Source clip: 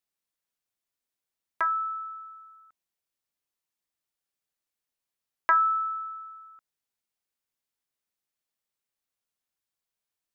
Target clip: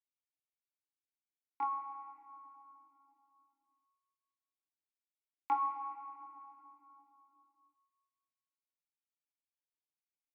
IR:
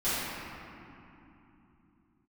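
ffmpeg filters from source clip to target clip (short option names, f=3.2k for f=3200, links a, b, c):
-filter_complex "[0:a]flanger=delay=20:depth=4.3:speed=0.3,asetrate=37084,aresample=44100,atempo=1.18921,bandreject=f=71.24:t=h:w=4,bandreject=f=142.48:t=h:w=4,bandreject=f=213.72:t=h:w=4,bandreject=f=284.96:t=h:w=4,bandreject=f=356.2:t=h:w=4,bandreject=f=427.44:t=h:w=4,bandreject=f=498.68:t=h:w=4,bandreject=f=569.92:t=h:w=4,bandreject=f=641.16:t=h:w=4,bandreject=f=712.4:t=h:w=4,bandreject=f=783.64:t=h:w=4,bandreject=f=854.88:t=h:w=4,bandreject=f=926.12:t=h:w=4,bandreject=f=997.36:t=h:w=4,bandreject=f=1.0686k:t=h:w=4,bandreject=f=1.13984k:t=h:w=4,bandreject=f=1.21108k:t=h:w=4,bandreject=f=1.28232k:t=h:w=4,bandreject=f=1.35356k:t=h:w=4,bandreject=f=1.4248k:t=h:w=4,bandreject=f=1.49604k:t=h:w=4,bandreject=f=1.56728k:t=h:w=4,bandreject=f=1.63852k:t=h:w=4,bandreject=f=1.70976k:t=h:w=4,bandreject=f=1.781k:t=h:w=4,bandreject=f=1.85224k:t=h:w=4,bandreject=f=1.92348k:t=h:w=4,bandreject=f=1.99472k:t=h:w=4,bandreject=f=2.06596k:t=h:w=4,bandreject=f=2.1372k:t=h:w=4,bandreject=f=2.20844k:t=h:w=4,bandreject=f=2.27968k:t=h:w=4,bandreject=f=2.35092k:t=h:w=4,bandreject=f=2.42216k:t=h:w=4,bandreject=f=2.4934k:t=h:w=4,bandreject=f=2.56464k:t=h:w=4,bandreject=f=2.63588k:t=h:w=4,bandreject=f=2.70712k:t=h:w=4,agate=range=-10dB:threshold=-56dB:ratio=16:detection=peak,asplit=3[a][b][c];[a]bandpass=f=300:t=q:w=8,volume=0dB[d];[b]bandpass=f=870:t=q:w=8,volume=-6dB[e];[c]bandpass=f=2.24k:t=q:w=8,volume=-9dB[f];[d][e][f]amix=inputs=3:normalize=0,highshelf=f=2.4k:g=11.5,asplit=2[g][h];[1:a]atrim=start_sample=2205,highshelf=f=2.3k:g=11.5[i];[h][i]afir=irnorm=-1:irlink=0,volume=-20.5dB[j];[g][j]amix=inputs=2:normalize=0,volume=5dB"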